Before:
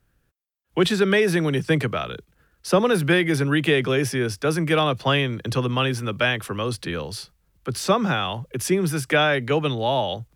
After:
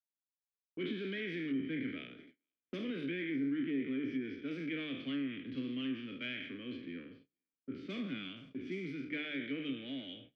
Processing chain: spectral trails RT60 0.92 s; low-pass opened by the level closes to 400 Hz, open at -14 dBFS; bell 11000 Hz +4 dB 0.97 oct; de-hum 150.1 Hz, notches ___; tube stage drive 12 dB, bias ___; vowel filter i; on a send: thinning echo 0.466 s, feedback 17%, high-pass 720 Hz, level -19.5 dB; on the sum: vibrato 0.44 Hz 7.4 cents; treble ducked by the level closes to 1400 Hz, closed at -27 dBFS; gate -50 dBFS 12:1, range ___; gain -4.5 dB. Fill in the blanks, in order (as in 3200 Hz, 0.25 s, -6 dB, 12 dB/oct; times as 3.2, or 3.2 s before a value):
29, 0.3, -29 dB